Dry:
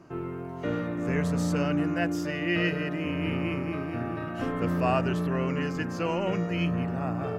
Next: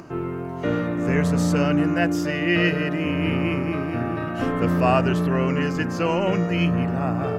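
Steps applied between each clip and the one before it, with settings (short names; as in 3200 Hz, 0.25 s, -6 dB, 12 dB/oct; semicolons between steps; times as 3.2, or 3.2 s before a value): upward compressor, threshold -43 dBFS; gain +6.5 dB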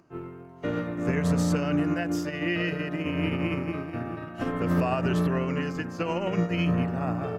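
limiter -14.5 dBFS, peak gain reduction 7.5 dB; upward expander 2.5:1, over -33 dBFS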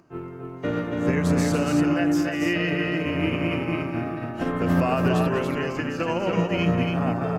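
loudspeakers at several distances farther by 68 m -12 dB, 97 m -4 dB; gain +3 dB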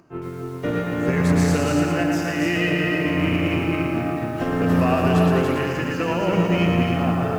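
in parallel at -9 dB: hard clip -25.5 dBFS, distortion -7 dB; on the sum: lo-fi delay 0.114 s, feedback 55%, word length 8-bit, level -4 dB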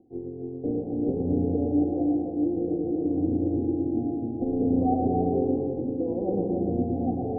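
rippled Chebyshev low-pass 780 Hz, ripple 9 dB; fixed phaser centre 610 Hz, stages 6; gain +6 dB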